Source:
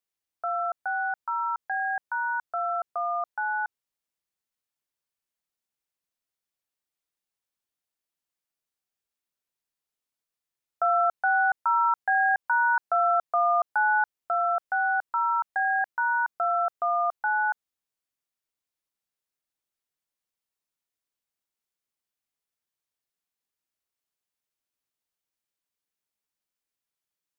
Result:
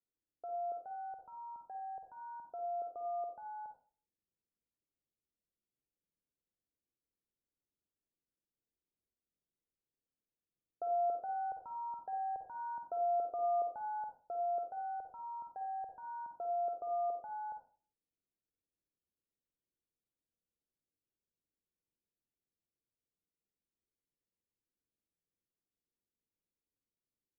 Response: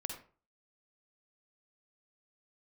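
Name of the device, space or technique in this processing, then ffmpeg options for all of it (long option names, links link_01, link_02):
next room: -filter_complex "[0:a]lowpass=frequency=480:width=0.5412,lowpass=frequency=480:width=1.3066[link_01];[1:a]atrim=start_sample=2205[link_02];[link_01][link_02]afir=irnorm=-1:irlink=0,volume=3.5dB"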